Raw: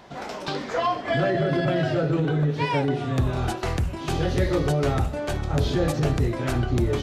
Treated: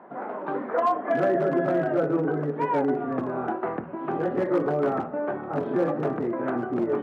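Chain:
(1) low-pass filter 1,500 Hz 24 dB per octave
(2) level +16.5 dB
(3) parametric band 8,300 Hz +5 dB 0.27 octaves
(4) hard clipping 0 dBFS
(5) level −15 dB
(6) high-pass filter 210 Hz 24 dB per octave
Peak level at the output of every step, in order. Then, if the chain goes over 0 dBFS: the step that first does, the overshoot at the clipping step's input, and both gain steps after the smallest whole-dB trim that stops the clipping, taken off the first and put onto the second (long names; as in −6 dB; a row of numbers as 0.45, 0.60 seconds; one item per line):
−11.0, +5.5, +5.5, 0.0, −15.0, −11.5 dBFS
step 2, 5.5 dB
step 2 +10.5 dB, step 5 −9 dB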